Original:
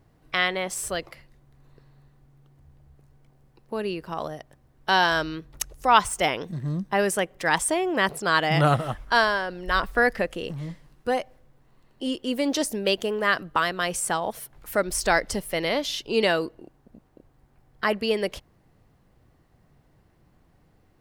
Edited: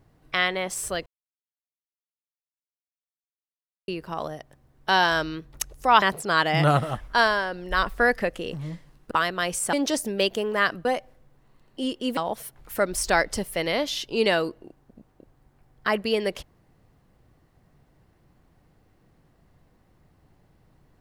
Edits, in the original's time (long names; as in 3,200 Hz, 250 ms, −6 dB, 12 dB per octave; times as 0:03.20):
0:01.06–0:03.88: silence
0:06.02–0:07.99: remove
0:11.08–0:12.40: swap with 0:13.52–0:14.14